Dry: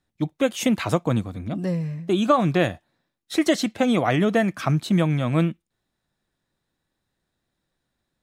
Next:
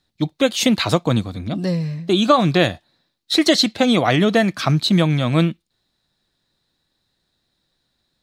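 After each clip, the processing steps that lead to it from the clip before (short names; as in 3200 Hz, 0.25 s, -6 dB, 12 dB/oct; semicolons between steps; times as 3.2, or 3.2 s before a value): bell 4200 Hz +12.5 dB 0.68 oct; gain +4 dB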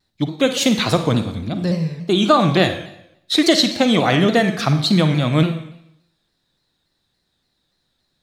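Schroeder reverb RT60 0.78 s, DRR 7.5 dB; shaped vibrato saw down 3.5 Hz, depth 100 cents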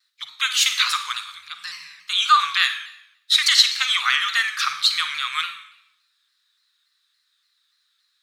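elliptic high-pass 1200 Hz, stop band 50 dB; gain +3.5 dB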